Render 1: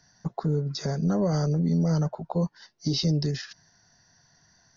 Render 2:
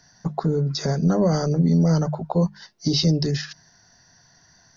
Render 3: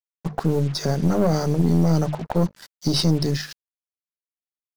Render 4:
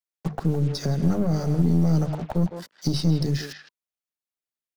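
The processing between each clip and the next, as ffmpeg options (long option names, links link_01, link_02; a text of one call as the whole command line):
ffmpeg -i in.wav -af "bandreject=frequency=50:width_type=h:width=6,bandreject=frequency=100:width_type=h:width=6,bandreject=frequency=150:width_type=h:width=6,bandreject=frequency=200:width_type=h:width=6,volume=6dB" out.wav
ffmpeg -i in.wav -af "dynaudnorm=framelen=100:gausssize=5:maxgain=6.5dB,aeval=exprs='(tanh(3.16*val(0)+0.65)-tanh(0.65))/3.16':channel_layout=same,acrusher=bits=5:mix=0:aa=0.5,volume=-2.5dB" out.wav
ffmpeg -i in.wav -filter_complex "[0:a]bandreject=frequency=990:width=19,asplit=2[link_01][link_02];[link_02]adelay=160,highpass=300,lowpass=3400,asoftclip=type=hard:threshold=-17.5dB,volume=-9dB[link_03];[link_01][link_03]amix=inputs=2:normalize=0,acrossover=split=240[link_04][link_05];[link_05]acompressor=threshold=-30dB:ratio=5[link_06];[link_04][link_06]amix=inputs=2:normalize=0" out.wav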